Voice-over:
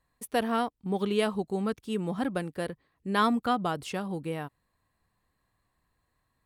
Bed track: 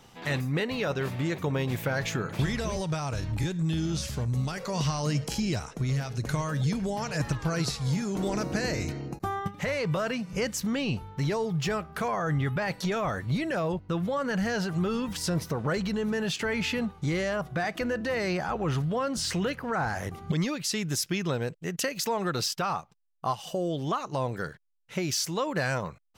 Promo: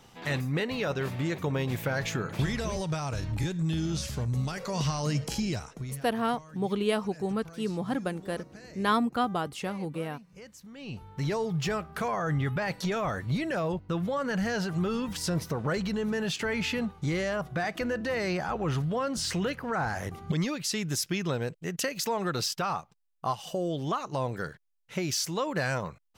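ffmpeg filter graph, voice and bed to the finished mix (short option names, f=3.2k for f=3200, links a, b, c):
-filter_complex "[0:a]adelay=5700,volume=-0.5dB[a];[1:a]volume=17dB,afade=t=out:st=5.4:d=0.7:silence=0.125893,afade=t=in:st=10.74:d=0.59:silence=0.125893[b];[a][b]amix=inputs=2:normalize=0"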